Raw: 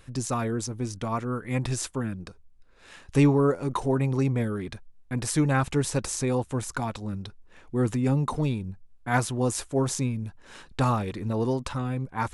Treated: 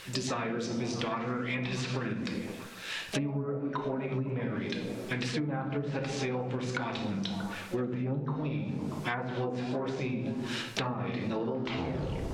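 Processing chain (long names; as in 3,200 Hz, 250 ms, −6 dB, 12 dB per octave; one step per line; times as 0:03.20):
turntable brake at the end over 0.78 s
meter weighting curve D
background noise white −53 dBFS
high-shelf EQ 7,200 Hz −9 dB
pitch-shifted copies added +7 semitones −12 dB
rectangular room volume 130 cubic metres, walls mixed, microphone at 0.63 metres
flanger 1.3 Hz, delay 1.6 ms, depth 6.6 ms, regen +78%
treble cut that deepens with the level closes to 960 Hz, closed at −23 dBFS
echo through a band-pass that steps 127 ms, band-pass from 150 Hz, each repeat 0.7 octaves, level −4.5 dB
downward compressor 16 to 1, threshold −37 dBFS, peak gain reduction 21 dB
level +8 dB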